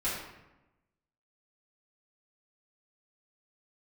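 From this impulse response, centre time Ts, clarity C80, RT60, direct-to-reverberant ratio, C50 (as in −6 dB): 59 ms, 4.5 dB, 1.0 s, −10.0 dB, 1.5 dB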